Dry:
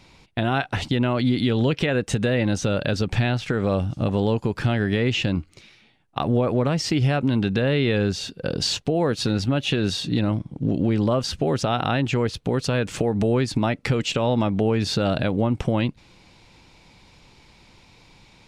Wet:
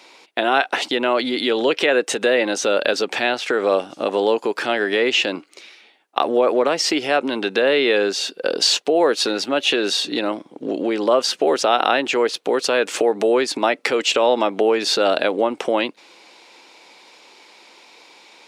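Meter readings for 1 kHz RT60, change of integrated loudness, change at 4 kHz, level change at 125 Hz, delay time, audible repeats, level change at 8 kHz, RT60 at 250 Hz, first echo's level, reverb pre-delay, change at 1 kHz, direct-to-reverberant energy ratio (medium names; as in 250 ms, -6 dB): no reverb, +4.0 dB, +7.5 dB, under -20 dB, no echo, no echo, +7.5 dB, no reverb, no echo, no reverb, +7.5 dB, no reverb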